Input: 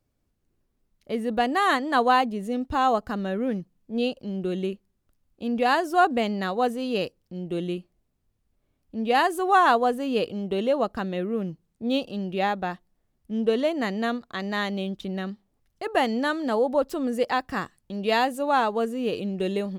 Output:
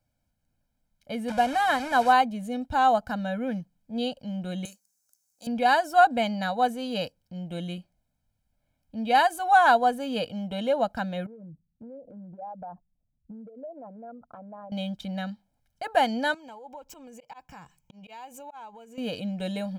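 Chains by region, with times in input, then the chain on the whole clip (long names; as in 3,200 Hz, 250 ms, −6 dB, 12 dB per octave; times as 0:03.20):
0:01.28–0:02.13: linear delta modulator 64 kbit/s, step −26 dBFS + high-shelf EQ 3,600 Hz −10 dB
0:04.65–0:05.47: high-pass filter 1,400 Hz 6 dB per octave + high shelf with overshoot 4,500 Hz +12.5 dB, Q 3
0:11.26–0:14.72: spectral envelope exaggerated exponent 2 + elliptic low-pass filter 1,300 Hz + downward compressor 12 to 1, threshold −36 dBFS
0:16.34–0:18.98: EQ curve with evenly spaced ripples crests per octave 0.74, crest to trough 11 dB + volume swells 383 ms + downward compressor, threshold −40 dBFS
whole clip: low-shelf EQ 86 Hz −7.5 dB; comb filter 1.3 ms, depth 96%; level −3 dB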